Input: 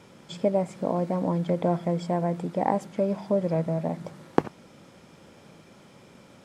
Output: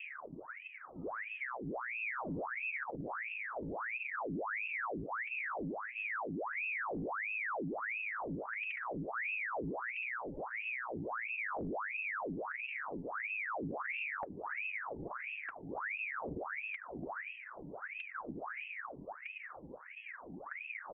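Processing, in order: steep low-pass 2 kHz 48 dB/octave; bass shelf 260 Hz +9.5 dB; feedback delay 387 ms, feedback 54%, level -6.5 dB; on a send at -11 dB: reverberation RT60 0.65 s, pre-delay 23 ms; on the sum: wide varispeed 0.308×; compression 8:1, threshold -31 dBFS, peak gain reduction 23 dB; phaser 0.43 Hz, delay 3.6 ms, feedback 61%; saturation -22 dBFS, distortion -19 dB; peak limiter -28.5 dBFS, peak gain reduction 6 dB; peaking EQ 1.1 kHz +10 dB 1.2 oct; feedback comb 390 Hz, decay 0.16 s, harmonics all, mix 50%; ring modulator with a swept carrier 1.4 kHz, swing 85%, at 1.5 Hz; trim +1.5 dB

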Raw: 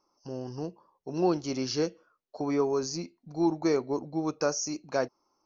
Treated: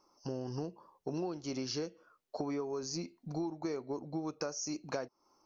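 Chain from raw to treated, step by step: compression 12:1, threshold -38 dBFS, peak gain reduction 18.5 dB; trim +4 dB

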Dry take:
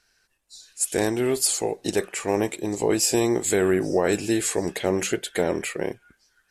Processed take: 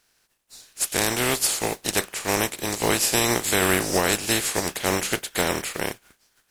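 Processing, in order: spectral contrast reduction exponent 0.41

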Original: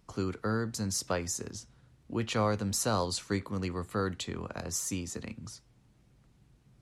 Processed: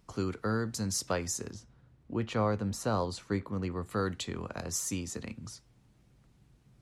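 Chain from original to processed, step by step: 1.54–3.86 s: treble shelf 2.9 kHz -11.5 dB

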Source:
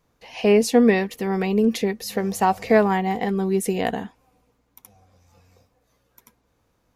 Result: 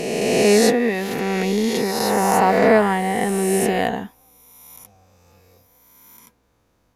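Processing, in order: reverse spectral sustain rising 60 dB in 2.21 s; 0.69–1.95 s: compression 3:1, threshold -17 dBFS, peak gain reduction 7 dB

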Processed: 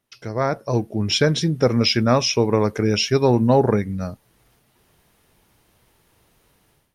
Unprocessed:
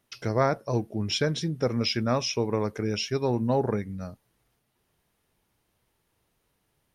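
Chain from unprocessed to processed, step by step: level rider gain up to 16 dB; trim -3 dB

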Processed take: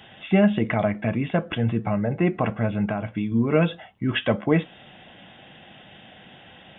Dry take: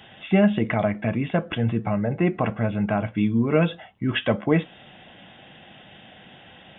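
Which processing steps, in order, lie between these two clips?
2.86–3.32 s: compression 5:1, threshold -23 dBFS, peak gain reduction 6 dB

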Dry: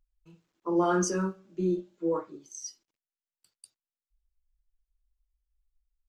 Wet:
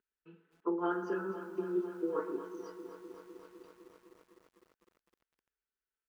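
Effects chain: high-order bell 830 Hz -12 dB 1.1 oct; comb 4.6 ms, depth 40%; compressor with a negative ratio -34 dBFS, ratio -1; cabinet simulation 320–2500 Hz, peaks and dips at 360 Hz +5 dB, 540 Hz -3 dB, 940 Hz +7 dB, 1.5 kHz +5 dB, 2.2 kHz -7 dB; band-passed feedback delay 116 ms, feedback 61%, band-pass 890 Hz, level -10.5 dB; bit-crushed delay 253 ms, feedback 80%, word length 10-bit, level -12 dB

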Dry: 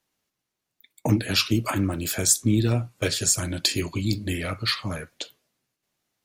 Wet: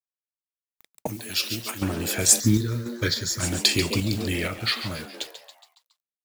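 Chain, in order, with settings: dynamic bell 2.5 kHz, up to +4 dB, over -36 dBFS, Q 0.87; bit crusher 7-bit; frequency-shifting echo 139 ms, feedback 51%, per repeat +120 Hz, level -11 dB; random-step tremolo; 1.07–1.82 s: pre-emphasis filter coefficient 0.8; 2.40–3.40 s: static phaser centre 2.7 kHz, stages 6; modulation noise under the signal 25 dB; 3.91–4.48 s: level flattener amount 50%; trim +2.5 dB

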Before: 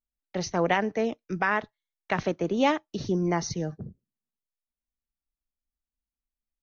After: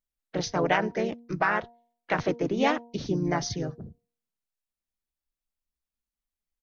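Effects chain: harmonic-percussive split harmonic -3 dB; harmony voices -5 st -14 dB, -3 st -4 dB; de-hum 236.1 Hz, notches 4

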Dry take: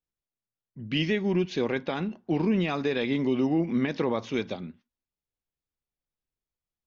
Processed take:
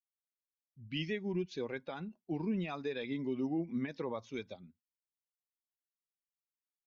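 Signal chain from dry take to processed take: expander on every frequency bin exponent 1.5; trim -8.5 dB

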